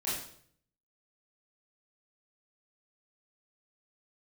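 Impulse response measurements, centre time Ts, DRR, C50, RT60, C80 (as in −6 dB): 56 ms, −10.0 dB, 1.5 dB, 0.60 s, 5.5 dB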